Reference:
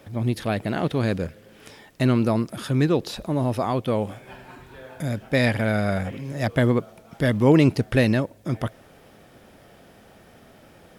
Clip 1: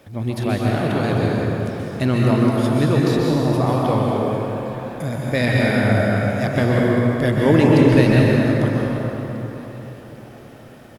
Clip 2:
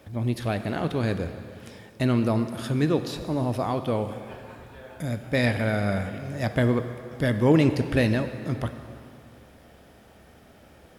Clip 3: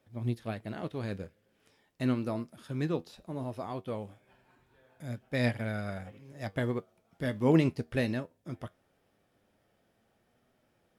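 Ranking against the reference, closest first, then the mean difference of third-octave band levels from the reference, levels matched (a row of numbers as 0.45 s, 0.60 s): 2, 3, 1; 3.0 dB, 5.5 dB, 7.5 dB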